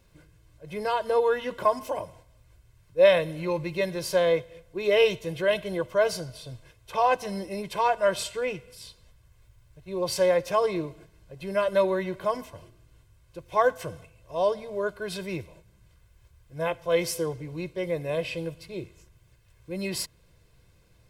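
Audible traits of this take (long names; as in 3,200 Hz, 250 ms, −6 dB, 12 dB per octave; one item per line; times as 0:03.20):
background noise floor −60 dBFS
spectral slope −4.5 dB per octave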